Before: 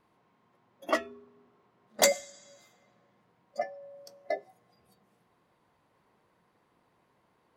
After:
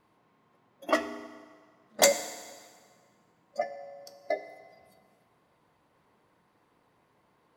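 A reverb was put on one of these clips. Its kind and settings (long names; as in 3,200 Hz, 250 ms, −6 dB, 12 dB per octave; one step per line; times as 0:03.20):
feedback delay network reverb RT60 1.7 s, low-frequency decay 0.9×, high-frequency decay 0.9×, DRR 9.5 dB
level +1.5 dB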